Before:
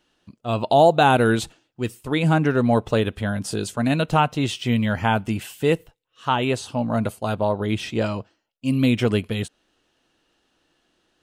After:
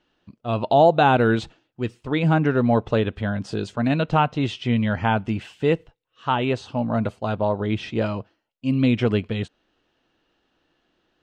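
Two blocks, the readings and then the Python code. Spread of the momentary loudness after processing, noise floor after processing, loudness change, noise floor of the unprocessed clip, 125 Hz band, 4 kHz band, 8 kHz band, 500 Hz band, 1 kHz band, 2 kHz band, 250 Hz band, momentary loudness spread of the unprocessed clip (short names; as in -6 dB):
13 LU, -73 dBFS, -0.5 dB, -72 dBFS, 0.0 dB, -3.5 dB, under -10 dB, -0.5 dB, -0.5 dB, -1.5 dB, 0.0 dB, 13 LU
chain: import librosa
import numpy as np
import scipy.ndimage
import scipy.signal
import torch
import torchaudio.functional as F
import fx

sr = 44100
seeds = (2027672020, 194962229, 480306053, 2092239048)

y = fx.air_absorb(x, sr, metres=150.0)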